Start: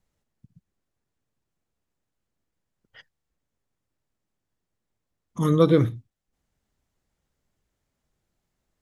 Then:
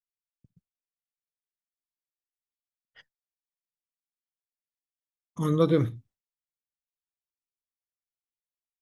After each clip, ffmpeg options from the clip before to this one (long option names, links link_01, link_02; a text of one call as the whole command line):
ffmpeg -i in.wav -af "agate=range=-33dB:threshold=-49dB:ratio=3:detection=peak,volume=-4.5dB" out.wav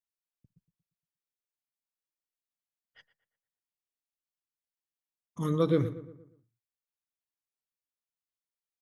ffmpeg -i in.wav -filter_complex "[0:a]asplit=2[link_01][link_02];[link_02]adelay=117,lowpass=frequency=2200:poles=1,volume=-13.5dB,asplit=2[link_03][link_04];[link_04]adelay=117,lowpass=frequency=2200:poles=1,volume=0.48,asplit=2[link_05][link_06];[link_06]adelay=117,lowpass=frequency=2200:poles=1,volume=0.48,asplit=2[link_07][link_08];[link_08]adelay=117,lowpass=frequency=2200:poles=1,volume=0.48,asplit=2[link_09][link_10];[link_10]adelay=117,lowpass=frequency=2200:poles=1,volume=0.48[link_11];[link_01][link_03][link_05][link_07][link_09][link_11]amix=inputs=6:normalize=0,volume=-4dB" out.wav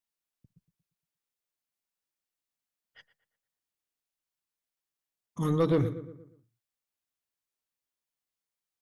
ffmpeg -i in.wav -af "asoftclip=type=tanh:threshold=-20dB,volume=3dB" out.wav